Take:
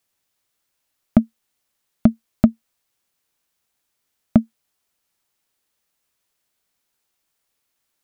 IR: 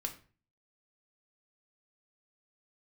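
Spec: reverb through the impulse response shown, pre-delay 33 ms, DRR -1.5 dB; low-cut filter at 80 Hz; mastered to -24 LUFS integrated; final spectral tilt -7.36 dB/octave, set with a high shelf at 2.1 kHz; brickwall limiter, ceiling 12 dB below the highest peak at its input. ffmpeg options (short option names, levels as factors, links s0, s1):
-filter_complex "[0:a]highpass=80,highshelf=f=2100:g=-6,alimiter=limit=0.266:level=0:latency=1,asplit=2[s0][s1];[1:a]atrim=start_sample=2205,adelay=33[s2];[s1][s2]afir=irnorm=-1:irlink=0,volume=1.19[s3];[s0][s3]amix=inputs=2:normalize=0,volume=1.41"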